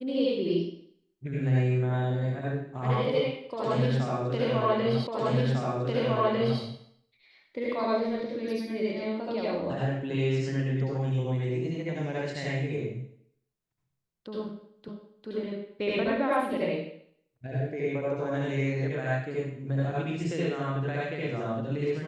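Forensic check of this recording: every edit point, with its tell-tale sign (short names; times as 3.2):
5.07 repeat of the last 1.55 s
14.88 repeat of the last 0.4 s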